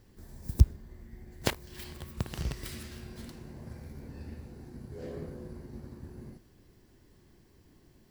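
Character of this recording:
background noise floor −62 dBFS
spectral slope −5.0 dB per octave

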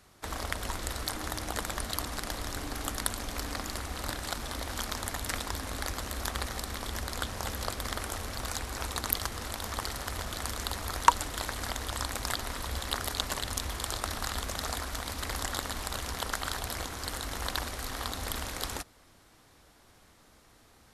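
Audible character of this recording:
background noise floor −60 dBFS
spectral slope −3.0 dB per octave

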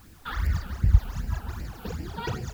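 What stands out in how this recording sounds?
phaser sweep stages 12, 2.6 Hz, lowest notch 100–1,200 Hz
a quantiser's noise floor 10 bits, dither triangular

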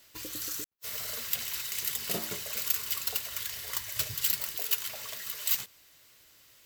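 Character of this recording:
background noise floor −59 dBFS
spectral slope 0.0 dB per octave

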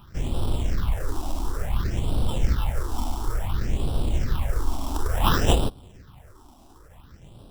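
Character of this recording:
aliases and images of a low sample rate 2,200 Hz, jitter 0%
phaser sweep stages 6, 0.57 Hz, lowest notch 120–1,900 Hz

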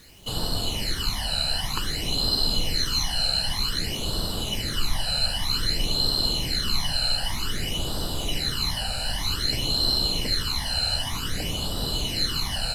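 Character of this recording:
phaser sweep stages 12, 0.53 Hz, lowest notch 340–2,200 Hz
a quantiser's noise floor 10 bits, dither none
SBC

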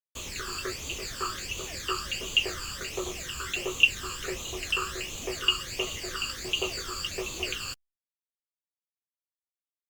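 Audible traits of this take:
phaser sweep stages 12, 1.4 Hz, lowest notch 640–1,700 Hz
a quantiser's noise floor 8 bits, dither none
Opus

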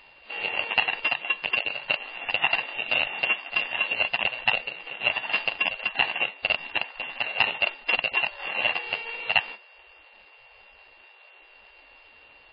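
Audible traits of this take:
a buzz of ramps at a fixed pitch in blocks of 16 samples
MP3

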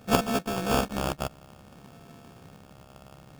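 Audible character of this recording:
a buzz of ramps at a fixed pitch in blocks of 64 samples
phaser sweep stages 2, 0.59 Hz, lowest notch 450–1,600 Hz
aliases and images of a low sample rate 2,000 Hz, jitter 0%

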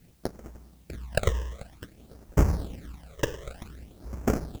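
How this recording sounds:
aliases and images of a low sample rate 1,000 Hz, jitter 20%
phaser sweep stages 12, 0.53 Hz, lowest notch 230–3,800 Hz
a quantiser's noise floor 12 bits, dither triangular

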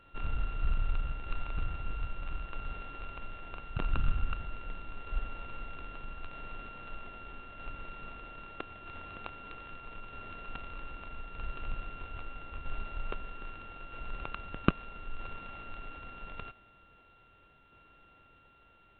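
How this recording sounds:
a buzz of ramps at a fixed pitch in blocks of 32 samples
tremolo saw down 0.79 Hz, depth 35%
A-law companding

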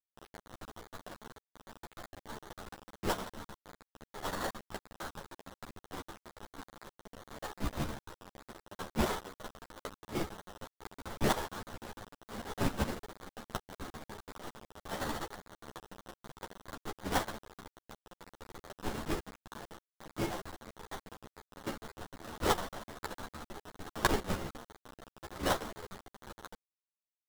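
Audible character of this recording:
aliases and images of a low sample rate 2,500 Hz, jitter 20%
chopped level 6.6 Hz, depth 60%, duty 65%
a quantiser's noise floor 8 bits, dither none
a shimmering, thickened sound

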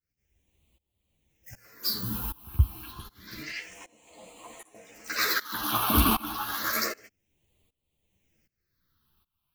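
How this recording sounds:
phaser sweep stages 6, 0.29 Hz, lowest notch 510–1,500 Hz
tremolo saw up 1.3 Hz, depth 95%
a shimmering, thickened sound

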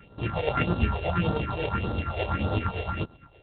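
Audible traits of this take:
a buzz of ramps at a fixed pitch in blocks of 32 samples
tremolo triangle 8.7 Hz, depth 55%
phaser sweep stages 4, 1.7 Hz, lowest notch 200–2,300 Hz
G.726

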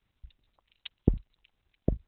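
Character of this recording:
a quantiser's noise floor 12 bits, dither none
Opus

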